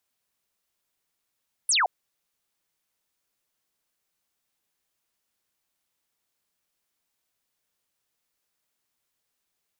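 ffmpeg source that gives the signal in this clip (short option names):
-f lavfi -i "aevalsrc='0.112*clip(t/0.002,0,1)*clip((0.17-t)/0.002,0,1)*sin(2*PI*11000*0.17/log(650/11000)*(exp(log(650/11000)*t/0.17)-1))':d=0.17:s=44100"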